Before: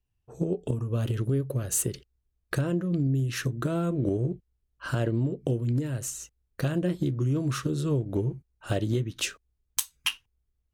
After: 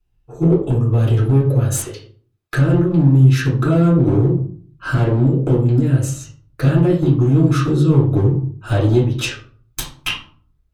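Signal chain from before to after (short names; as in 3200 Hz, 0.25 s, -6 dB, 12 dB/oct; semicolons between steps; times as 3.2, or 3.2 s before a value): 1.73–2.55 HPF 680 Hz 12 dB/oct; one-sided clip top -22.5 dBFS, bottom -13.5 dBFS; reverb RT60 0.50 s, pre-delay 4 ms, DRR -6.5 dB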